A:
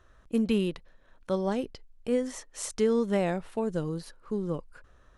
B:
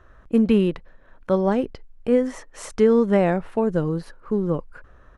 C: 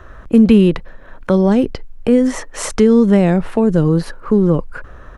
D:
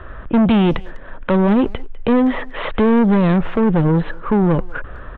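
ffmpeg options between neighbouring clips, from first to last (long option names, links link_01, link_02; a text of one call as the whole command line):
ffmpeg -i in.wav -af "firequalizer=gain_entry='entry(1600,0);entry(3600,-9);entry(7600,-12)':delay=0.05:min_phase=1,volume=8.5dB" out.wav
ffmpeg -i in.wav -filter_complex "[0:a]acrossover=split=330|3000[link_01][link_02][link_03];[link_02]acompressor=threshold=-28dB:ratio=6[link_04];[link_01][link_04][link_03]amix=inputs=3:normalize=0,asplit=2[link_05][link_06];[link_06]alimiter=limit=-22dB:level=0:latency=1:release=31,volume=1dB[link_07];[link_05][link_07]amix=inputs=2:normalize=0,volume=7dB" out.wav
ffmpeg -i in.wav -filter_complex "[0:a]aresample=8000,asoftclip=type=tanh:threshold=-14.5dB,aresample=44100,asplit=2[link_01][link_02];[link_02]adelay=200,highpass=300,lowpass=3400,asoftclip=type=hard:threshold=-23dB,volume=-18dB[link_03];[link_01][link_03]amix=inputs=2:normalize=0,volume=4dB" out.wav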